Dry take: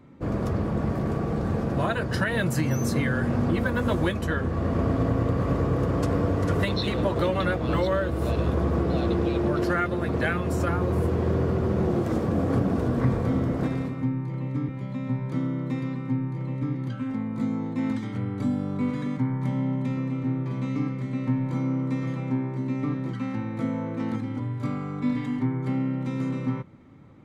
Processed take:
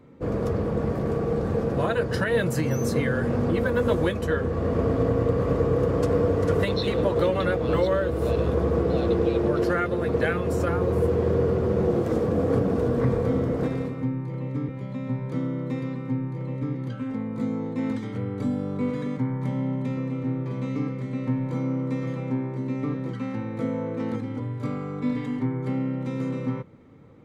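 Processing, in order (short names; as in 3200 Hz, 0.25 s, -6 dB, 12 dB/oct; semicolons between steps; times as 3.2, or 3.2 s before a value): bell 470 Hz +10.5 dB 0.31 oct; gain -1 dB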